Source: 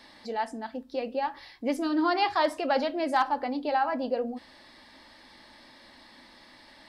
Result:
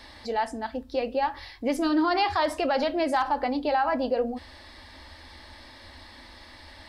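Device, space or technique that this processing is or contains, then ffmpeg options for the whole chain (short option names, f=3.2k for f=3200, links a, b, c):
car stereo with a boomy subwoofer: -af "lowshelf=f=110:t=q:w=3:g=10,alimiter=limit=-21dB:level=0:latency=1:release=51,volume=5dB"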